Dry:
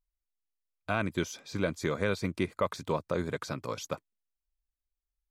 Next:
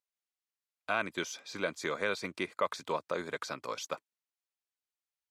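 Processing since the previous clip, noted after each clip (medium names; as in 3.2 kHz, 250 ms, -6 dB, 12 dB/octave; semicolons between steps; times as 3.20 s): frequency weighting A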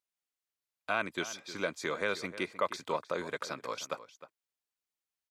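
echo from a far wall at 53 m, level -14 dB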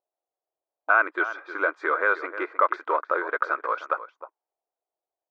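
in parallel at -4 dB: hard clipper -32 dBFS, distortion -6 dB; on the sum: brick-wall FIR high-pass 290 Hz; touch-sensitive low-pass 680–1400 Hz up, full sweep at -36.5 dBFS; trim +2.5 dB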